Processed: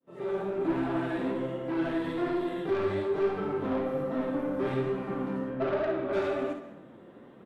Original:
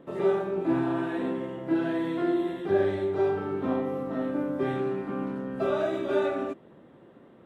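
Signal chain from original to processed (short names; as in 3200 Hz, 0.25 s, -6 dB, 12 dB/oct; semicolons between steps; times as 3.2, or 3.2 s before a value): opening faded in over 0.62 s; 5.49–6.12 LPF 2700 Hz -> 1600 Hz 12 dB/oct; soft clip -26.5 dBFS, distortion -11 dB; flange 1.2 Hz, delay 3.4 ms, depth 8.1 ms, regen +38%; early reflections 53 ms -9 dB, 67 ms -10.5 dB; plate-style reverb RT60 0.91 s, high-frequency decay 0.8×, pre-delay 0.11 s, DRR 12.5 dB; gain +5 dB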